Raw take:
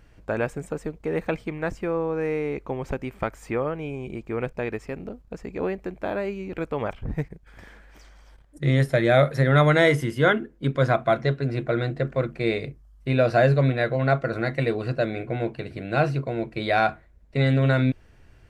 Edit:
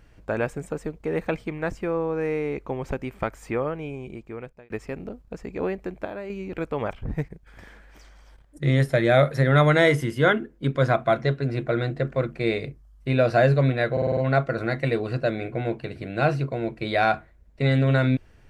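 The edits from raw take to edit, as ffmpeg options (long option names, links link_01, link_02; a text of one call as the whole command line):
ffmpeg -i in.wav -filter_complex "[0:a]asplit=9[link_01][link_02][link_03][link_04][link_05][link_06][link_07][link_08][link_09];[link_01]atrim=end=4.7,asetpts=PTS-STARTPTS,afade=type=out:start_time=3.42:duration=1.28:curve=qsin[link_10];[link_02]atrim=start=4.7:end=6.052,asetpts=PTS-STARTPTS,afade=type=in:duration=0.004:curve=hsin[link_11];[link_03]atrim=start=6.048:end=6.302,asetpts=PTS-STARTPTS,volume=-7dB[link_12];[link_04]atrim=start=6.298:end=13.972[link_13];[link_05]atrim=start=13.918:end=13.972[link_14];[link_06]atrim=start=13.918:end=13.972[link_15];[link_07]atrim=start=13.918:end=13.972[link_16];[link_08]atrim=start=13.918:end=13.972[link_17];[link_09]atrim=start=13.918[link_18];[link_10][link_11]concat=n=2:v=0:a=1[link_19];[link_19][link_12]acrossfade=duration=0.004:curve1=hsin:curve2=hsin[link_20];[link_20][link_13]acrossfade=duration=0.004:curve1=hsin:curve2=hsin[link_21];[link_21][link_14]acrossfade=duration=0.004:curve1=hsin:curve2=hsin[link_22];[link_22][link_15]acrossfade=duration=0.004:curve1=hsin:curve2=hsin[link_23];[link_23][link_16]acrossfade=duration=0.004:curve1=hsin:curve2=hsin[link_24];[link_24][link_17]acrossfade=duration=0.004:curve1=hsin:curve2=hsin[link_25];[link_25][link_18]acrossfade=duration=0.004:curve1=hsin:curve2=hsin" out.wav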